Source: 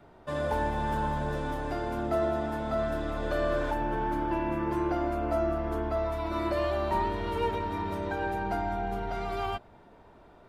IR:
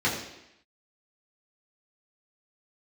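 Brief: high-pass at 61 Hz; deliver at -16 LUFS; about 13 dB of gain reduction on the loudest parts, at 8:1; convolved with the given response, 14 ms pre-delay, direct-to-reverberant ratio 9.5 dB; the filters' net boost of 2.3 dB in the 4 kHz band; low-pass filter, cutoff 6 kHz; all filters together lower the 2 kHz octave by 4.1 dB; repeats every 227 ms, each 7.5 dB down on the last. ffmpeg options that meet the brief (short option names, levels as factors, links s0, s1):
-filter_complex "[0:a]highpass=61,lowpass=6000,equalizer=f=2000:t=o:g=-7,equalizer=f=4000:t=o:g=6,acompressor=threshold=0.0112:ratio=8,aecho=1:1:227|454|681|908|1135:0.422|0.177|0.0744|0.0312|0.0131,asplit=2[s0][s1];[1:a]atrim=start_sample=2205,adelay=14[s2];[s1][s2]afir=irnorm=-1:irlink=0,volume=0.075[s3];[s0][s3]amix=inputs=2:normalize=0,volume=17.8"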